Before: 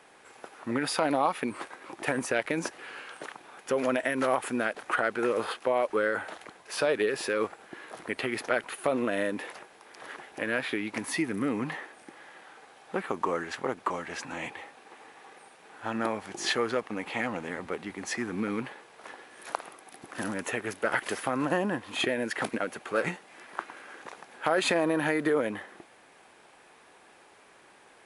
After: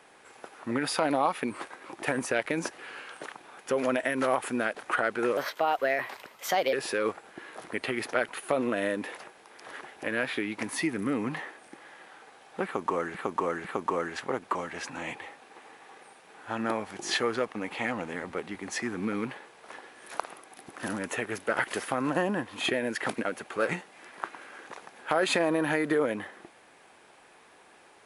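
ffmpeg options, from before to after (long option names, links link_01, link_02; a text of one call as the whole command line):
ffmpeg -i in.wav -filter_complex "[0:a]asplit=5[link_01][link_02][link_03][link_04][link_05];[link_01]atrim=end=5.374[link_06];[link_02]atrim=start=5.37:end=7.08,asetpts=PTS-STARTPTS,asetrate=55566,aresample=44100[link_07];[link_03]atrim=start=7.076:end=13.502[link_08];[link_04]atrim=start=12.998:end=13.502[link_09];[link_05]atrim=start=12.998[link_10];[link_06][link_07]acrossfade=duration=0.004:curve1=hsin:curve2=hsin[link_11];[link_11][link_08]acrossfade=duration=0.004:curve1=hsin:curve2=hsin[link_12];[link_12][link_09]acrossfade=duration=0.004:curve1=hsin:curve2=hsin[link_13];[link_13][link_10]acrossfade=duration=0.004:curve1=hsin:curve2=hsin" out.wav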